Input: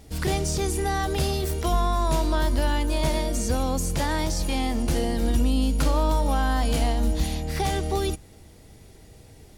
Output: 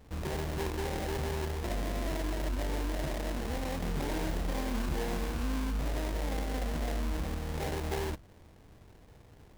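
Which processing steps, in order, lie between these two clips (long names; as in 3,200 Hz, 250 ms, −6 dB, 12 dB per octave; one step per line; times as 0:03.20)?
brickwall limiter −18.5 dBFS, peak gain reduction 6 dB
sample-rate reduction 1,300 Hz, jitter 20%
0:03.79–0:05.43: double-tracking delay 28 ms −5 dB
level −7 dB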